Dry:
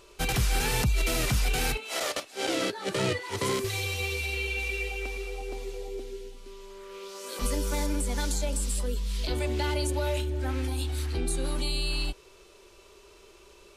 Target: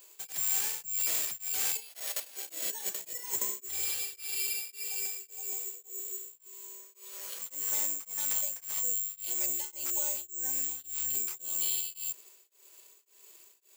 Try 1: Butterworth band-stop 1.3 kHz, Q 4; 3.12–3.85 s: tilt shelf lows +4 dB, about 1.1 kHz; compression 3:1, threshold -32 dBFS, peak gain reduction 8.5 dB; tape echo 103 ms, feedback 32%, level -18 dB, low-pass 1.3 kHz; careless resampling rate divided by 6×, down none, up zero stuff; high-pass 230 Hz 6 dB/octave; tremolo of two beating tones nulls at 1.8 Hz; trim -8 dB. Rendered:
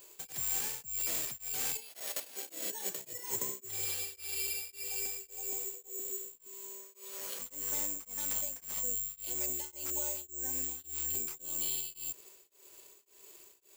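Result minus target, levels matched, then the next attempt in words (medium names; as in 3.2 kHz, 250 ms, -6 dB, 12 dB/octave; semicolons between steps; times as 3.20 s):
250 Hz band +7.5 dB; compression: peak gain reduction +4.5 dB
Butterworth band-stop 1.3 kHz, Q 4; 3.12–3.85 s: tilt shelf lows +4 dB, about 1.1 kHz; compression 3:1, threshold -25.5 dBFS, peak gain reduction 4 dB; tape echo 103 ms, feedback 32%, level -18 dB, low-pass 1.3 kHz; careless resampling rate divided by 6×, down none, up zero stuff; high-pass 870 Hz 6 dB/octave; tremolo of two beating tones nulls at 1.8 Hz; trim -8 dB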